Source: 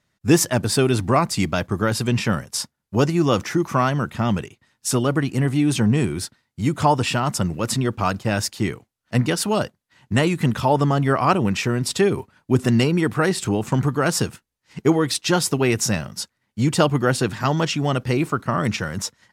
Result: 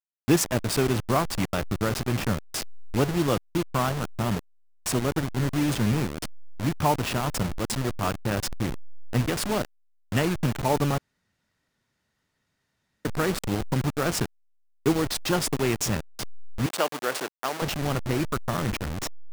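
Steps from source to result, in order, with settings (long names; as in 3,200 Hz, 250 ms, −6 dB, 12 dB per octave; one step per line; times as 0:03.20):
hold until the input has moved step −19 dBFS
0:10.98–0:13.05: fill with room tone
0:16.66–0:17.62: high-pass filter 470 Hz 12 dB per octave
level −5 dB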